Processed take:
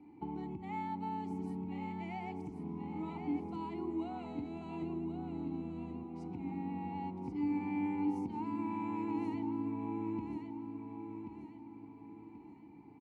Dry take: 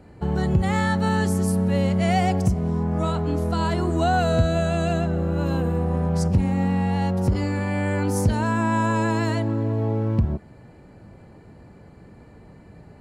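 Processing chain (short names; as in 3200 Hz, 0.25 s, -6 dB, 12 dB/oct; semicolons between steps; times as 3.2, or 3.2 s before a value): 4.82–6.04 low shelf 360 Hz +12 dB; compressor, threshold -25 dBFS, peak gain reduction 14.5 dB; vowel filter u; feedback echo 1.083 s, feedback 39%, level -7 dB; gain +2 dB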